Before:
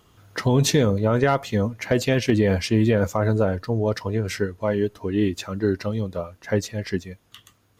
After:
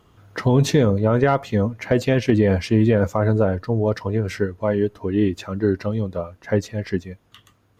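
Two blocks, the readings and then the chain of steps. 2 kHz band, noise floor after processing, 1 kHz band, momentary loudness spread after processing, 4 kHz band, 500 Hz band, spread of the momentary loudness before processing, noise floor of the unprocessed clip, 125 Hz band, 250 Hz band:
0.0 dB, −61 dBFS, +1.5 dB, 9 LU, −3.5 dB, +2.5 dB, 9 LU, −62 dBFS, +2.5 dB, +2.5 dB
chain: high-shelf EQ 3,000 Hz −9.5 dB
level +2.5 dB

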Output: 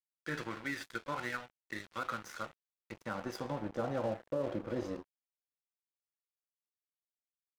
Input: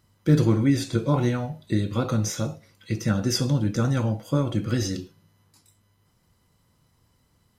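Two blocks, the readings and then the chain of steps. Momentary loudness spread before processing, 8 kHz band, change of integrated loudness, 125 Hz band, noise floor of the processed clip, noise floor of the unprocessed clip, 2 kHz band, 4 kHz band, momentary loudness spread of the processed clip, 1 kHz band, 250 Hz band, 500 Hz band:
10 LU, −21.0 dB, −15.0 dB, −24.5 dB, below −85 dBFS, −66 dBFS, −3.5 dB, −16.0 dB, 9 LU, −6.0 dB, −18.5 dB, −9.5 dB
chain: band-pass filter sweep 1,700 Hz → 590 Hz, 0:01.92–0:04.20
dead-zone distortion −48.5 dBFS
brickwall limiter −30 dBFS, peak gain reduction 10 dB
level +4.5 dB

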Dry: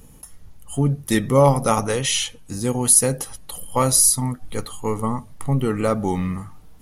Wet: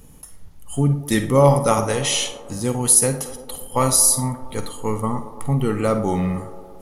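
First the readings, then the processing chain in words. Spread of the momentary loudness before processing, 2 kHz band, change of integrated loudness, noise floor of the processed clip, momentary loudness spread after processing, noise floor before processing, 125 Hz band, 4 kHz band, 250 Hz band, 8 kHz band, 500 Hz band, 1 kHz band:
15 LU, +0.5 dB, +0.5 dB, −43 dBFS, 16 LU, −46 dBFS, +1.0 dB, +0.5 dB, +0.5 dB, +0.5 dB, +1.0 dB, +0.5 dB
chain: delay with a band-pass on its return 113 ms, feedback 73%, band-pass 550 Hz, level −12 dB
four-comb reverb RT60 0.33 s, DRR 10 dB

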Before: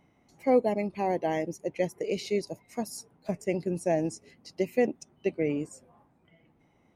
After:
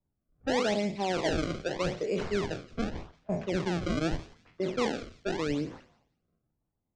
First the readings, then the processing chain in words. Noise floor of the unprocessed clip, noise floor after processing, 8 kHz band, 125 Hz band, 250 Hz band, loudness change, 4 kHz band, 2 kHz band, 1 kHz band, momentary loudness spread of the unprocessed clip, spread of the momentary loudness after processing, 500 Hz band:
−66 dBFS, −83 dBFS, −1.5 dB, +2.5 dB, −0.5 dB, −1.5 dB, +7.5 dB, +4.0 dB, −1.5 dB, 12 LU, 7 LU, −3.0 dB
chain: peak hold with a decay on every bin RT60 0.48 s
sample-and-hold swept by an LFO 28×, swing 160% 0.83 Hz
low-pass filter 6,500 Hz 24 dB per octave
low-shelf EQ 85 Hz +10.5 dB
brickwall limiter −21 dBFS, peak gain reduction 9.5 dB
low-pass that shuts in the quiet parts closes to 1,300 Hz, open at −25 dBFS
on a send: delay with a high-pass on its return 174 ms, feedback 43%, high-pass 2,700 Hz, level −11.5 dB
on the sum: multiband upward and downward expander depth 70%

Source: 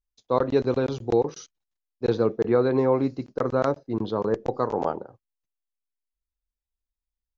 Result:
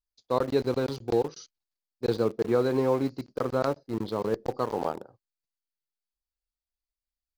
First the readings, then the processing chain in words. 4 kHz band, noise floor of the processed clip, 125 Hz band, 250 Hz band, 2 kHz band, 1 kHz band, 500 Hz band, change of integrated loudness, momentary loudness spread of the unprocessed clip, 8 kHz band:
+1.0 dB, below −85 dBFS, −3.5 dB, −3.5 dB, −2.5 dB, −3.5 dB, −3.5 dB, −3.5 dB, 8 LU, can't be measured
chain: parametric band 4,600 Hz +10.5 dB 0.35 octaves
in parallel at −6 dB: centre clipping without the shift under −27 dBFS
on the sum: level −7 dB

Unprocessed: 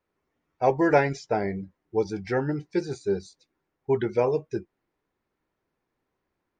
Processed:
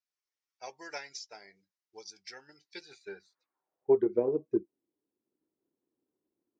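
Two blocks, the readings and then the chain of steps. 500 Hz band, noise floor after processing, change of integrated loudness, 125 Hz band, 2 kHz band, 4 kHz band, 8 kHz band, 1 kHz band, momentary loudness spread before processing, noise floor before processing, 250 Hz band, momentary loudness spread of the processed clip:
−7.0 dB, below −85 dBFS, −5.0 dB, −20.5 dB, −14.5 dB, −1.5 dB, can't be measured, −18.5 dB, 11 LU, −81 dBFS, −8.0 dB, 22 LU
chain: band-pass filter sweep 5,400 Hz → 310 Hz, 0:02.56–0:04.19
transient designer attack +5 dB, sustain −2 dB

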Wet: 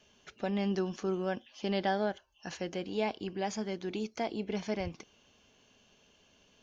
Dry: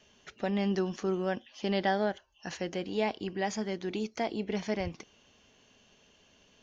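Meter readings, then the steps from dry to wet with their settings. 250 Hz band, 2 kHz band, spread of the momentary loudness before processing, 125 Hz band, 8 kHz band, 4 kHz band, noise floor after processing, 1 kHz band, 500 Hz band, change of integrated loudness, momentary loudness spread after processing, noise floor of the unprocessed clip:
−2.0 dB, −3.5 dB, 8 LU, −2.0 dB, can't be measured, −2.0 dB, −66 dBFS, −2.0 dB, −2.0 dB, −2.0 dB, 8 LU, −64 dBFS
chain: notch filter 1,900 Hz, Q 13
level −2 dB

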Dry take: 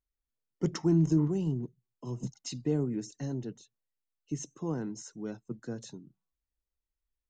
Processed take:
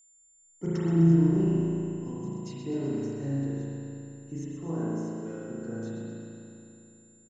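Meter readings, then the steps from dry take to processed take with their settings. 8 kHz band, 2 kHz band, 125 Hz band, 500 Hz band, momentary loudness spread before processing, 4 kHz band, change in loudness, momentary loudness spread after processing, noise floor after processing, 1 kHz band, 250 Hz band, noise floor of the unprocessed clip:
−4.5 dB, +4.0 dB, +5.0 dB, +3.5 dB, 16 LU, −6.0 dB, +3.5 dB, 19 LU, −61 dBFS, +3.5 dB, +4.5 dB, below −85 dBFS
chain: bass and treble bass −1 dB, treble −7 dB
notch filter 1,200 Hz, Q 15
steady tone 7,200 Hz −52 dBFS
on a send: repeating echo 127 ms, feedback 59%, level −10 dB
on the sum: spring reverb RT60 3.1 s, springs 36 ms, chirp 75 ms, DRR −9 dB
level −6 dB

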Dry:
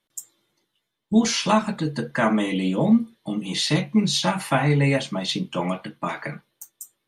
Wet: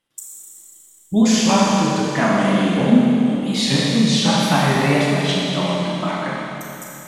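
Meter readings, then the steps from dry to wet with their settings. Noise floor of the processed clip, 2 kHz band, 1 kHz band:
−49 dBFS, +5.0 dB, +5.5 dB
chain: tape wow and flutter 150 cents
four-comb reverb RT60 3.1 s, combs from 28 ms, DRR −4 dB

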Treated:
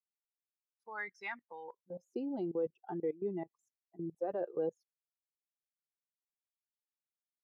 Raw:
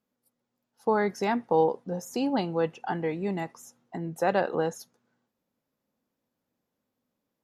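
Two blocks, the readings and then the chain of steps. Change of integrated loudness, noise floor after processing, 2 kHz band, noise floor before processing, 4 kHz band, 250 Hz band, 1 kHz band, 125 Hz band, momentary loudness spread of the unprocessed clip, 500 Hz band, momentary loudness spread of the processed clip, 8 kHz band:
−11.5 dB, below −85 dBFS, −9.5 dB, −84 dBFS, below −20 dB, −10.5 dB, −18.0 dB, −14.5 dB, 12 LU, −10.5 dB, 13 LU, below −25 dB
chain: spectral dynamics exaggerated over time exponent 2
output level in coarse steps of 19 dB
band-pass filter sweep 2,000 Hz → 430 Hz, 0:01.61–0:02.15
level +8.5 dB

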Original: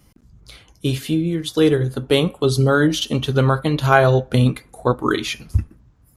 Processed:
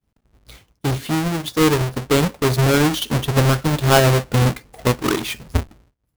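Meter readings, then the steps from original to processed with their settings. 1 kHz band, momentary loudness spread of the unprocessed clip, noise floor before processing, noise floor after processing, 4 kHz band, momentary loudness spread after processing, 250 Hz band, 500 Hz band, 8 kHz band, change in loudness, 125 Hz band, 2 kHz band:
0.0 dB, 9 LU, −55 dBFS, −71 dBFS, +1.0 dB, 10 LU, −0.5 dB, −1.5 dB, +6.5 dB, 0.0 dB, +0.5 dB, 0.0 dB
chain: each half-wave held at its own peak
downward expander −37 dBFS
level −4.5 dB

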